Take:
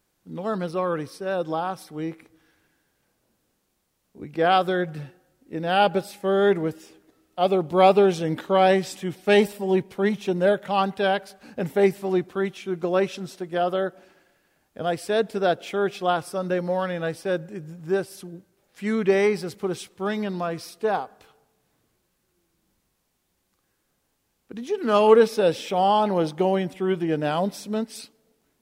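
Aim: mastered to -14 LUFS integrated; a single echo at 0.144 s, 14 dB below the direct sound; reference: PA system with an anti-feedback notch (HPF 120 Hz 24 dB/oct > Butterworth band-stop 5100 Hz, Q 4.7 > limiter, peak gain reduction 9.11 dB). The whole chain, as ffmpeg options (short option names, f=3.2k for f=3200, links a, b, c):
-af "highpass=f=120:w=0.5412,highpass=f=120:w=1.3066,asuperstop=centerf=5100:order=8:qfactor=4.7,aecho=1:1:144:0.2,volume=11dB,alimiter=limit=-1dB:level=0:latency=1"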